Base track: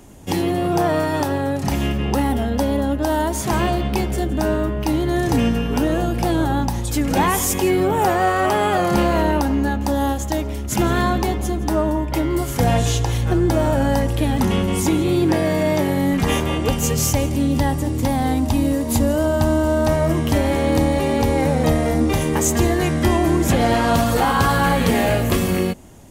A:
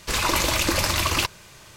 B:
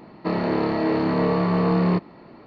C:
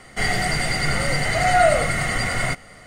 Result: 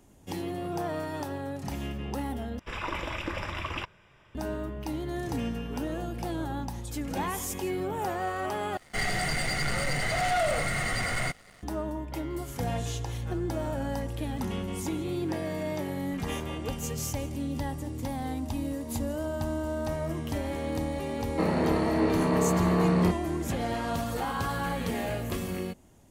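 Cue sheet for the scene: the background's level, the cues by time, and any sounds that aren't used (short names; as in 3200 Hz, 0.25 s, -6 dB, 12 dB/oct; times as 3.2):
base track -14 dB
2.59 replace with A -10 dB + polynomial smoothing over 25 samples
8.77 replace with C -16 dB + sample leveller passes 3
21.13 add B -4 dB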